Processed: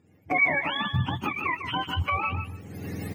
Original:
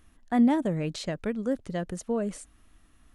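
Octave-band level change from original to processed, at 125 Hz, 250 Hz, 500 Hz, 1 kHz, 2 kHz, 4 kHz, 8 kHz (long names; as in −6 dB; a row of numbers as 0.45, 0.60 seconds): +6.0 dB, −9.5 dB, −6.0 dB, +7.5 dB, +17.0 dB, +11.0 dB, can't be measured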